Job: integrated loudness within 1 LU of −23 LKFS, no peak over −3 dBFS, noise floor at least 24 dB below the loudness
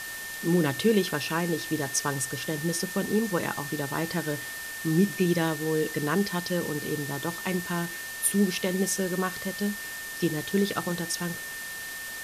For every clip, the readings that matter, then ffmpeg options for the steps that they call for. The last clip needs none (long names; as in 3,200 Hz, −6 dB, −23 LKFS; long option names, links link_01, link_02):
interfering tone 1,800 Hz; level of the tone −37 dBFS; background noise floor −38 dBFS; target noise floor −52 dBFS; integrated loudness −28.0 LKFS; sample peak −11.0 dBFS; target loudness −23.0 LKFS
→ -af "bandreject=frequency=1800:width=30"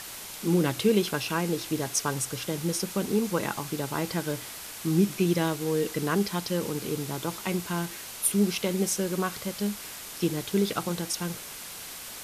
interfering tone none found; background noise floor −41 dBFS; target noise floor −53 dBFS
→ -af "afftdn=noise_reduction=12:noise_floor=-41"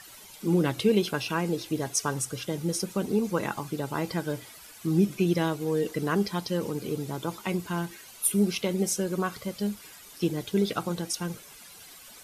background noise floor −49 dBFS; target noise floor −53 dBFS
→ -af "afftdn=noise_reduction=6:noise_floor=-49"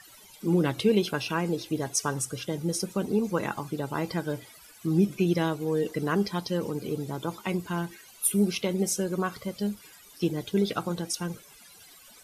background noise floor −53 dBFS; integrated loudness −29.0 LKFS; sample peak −12.0 dBFS; target loudness −23.0 LKFS
→ -af "volume=6dB"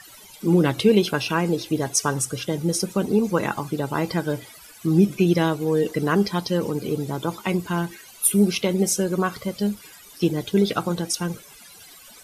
integrated loudness −23.0 LKFS; sample peak −6.0 dBFS; background noise floor −47 dBFS